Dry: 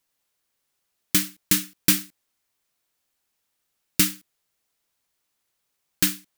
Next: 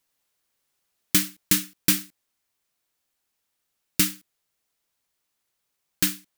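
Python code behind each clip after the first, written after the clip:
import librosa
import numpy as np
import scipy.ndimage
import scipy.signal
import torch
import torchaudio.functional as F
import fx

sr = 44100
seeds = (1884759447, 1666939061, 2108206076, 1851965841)

y = fx.rider(x, sr, range_db=10, speed_s=0.5)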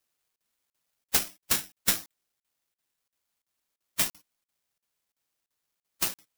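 y = fx.spec_quant(x, sr, step_db=30)
y = (np.kron(y[::8], np.eye(8)[0]) * 8)[:len(y)]
y = fx.buffer_crackle(y, sr, first_s=0.36, period_s=0.34, block=2048, kind='zero')
y = F.gain(torch.from_numpy(y), -12.5).numpy()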